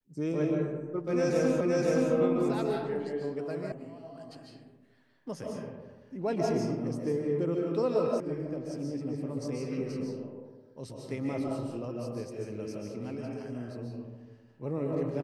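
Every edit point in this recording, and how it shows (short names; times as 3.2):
1.61 repeat of the last 0.52 s
3.72 sound cut off
8.2 sound cut off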